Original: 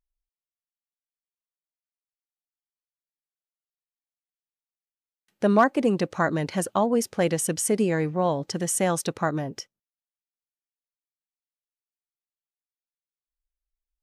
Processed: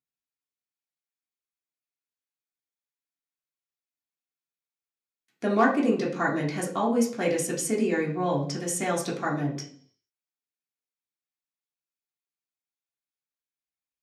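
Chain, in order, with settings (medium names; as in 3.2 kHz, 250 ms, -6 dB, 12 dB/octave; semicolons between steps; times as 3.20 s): high-pass 100 Hz; reverberation RT60 0.55 s, pre-delay 3 ms, DRR -4 dB; trim -5.5 dB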